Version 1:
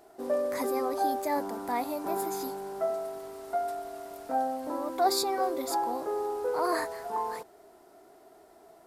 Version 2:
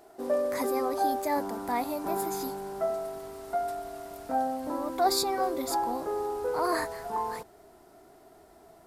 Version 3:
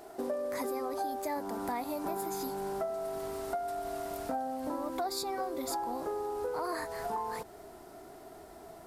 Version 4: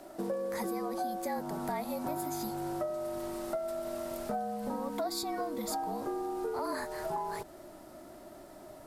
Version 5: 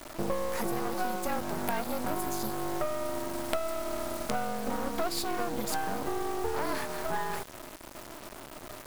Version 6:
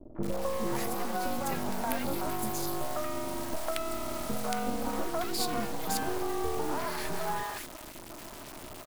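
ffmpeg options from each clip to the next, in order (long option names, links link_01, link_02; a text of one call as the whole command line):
ffmpeg -i in.wav -af "asubboost=boost=2.5:cutoff=220,volume=1.5dB" out.wav
ffmpeg -i in.wav -af "acompressor=threshold=-38dB:ratio=6,volume=5dB" out.wav
ffmpeg -i in.wav -af "afreqshift=-49" out.wav
ffmpeg -i in.wav -af "acrusher=bits=5:dc=4:mix=0:aa=0.000001,volume=7dB" out.wav
ffmpeg -i in.wav -filter_complex "[0:a]acrossover=split=500|1500[link_01][link_02][link_03];[link_02]adelay=150[link_04];[link_03]adelay=230[link_05];[link_01][link_04][link_05]amix=inputs=3:normalize=0,volume=1.5dB" out.wav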